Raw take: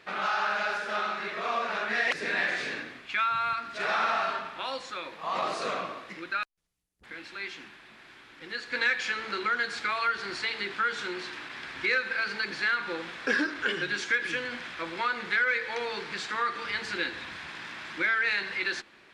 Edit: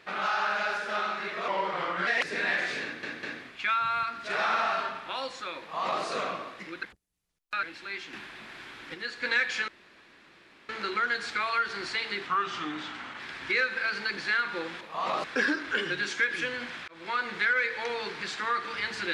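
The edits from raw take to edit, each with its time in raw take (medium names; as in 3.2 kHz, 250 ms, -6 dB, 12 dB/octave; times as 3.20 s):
1.48–1.97 s: speed 83%
2.73 s: stutter 0.20 s, 3 plays
5.10–5.53 s: copy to 13.15 s
6.33–7.13 s: reverse
7.63–8.44 s: gain +7 dB
9.18 s: insert room tone 1.01 s
10.76–11.54 s: speed 84%
14.79–15.10 s: fade in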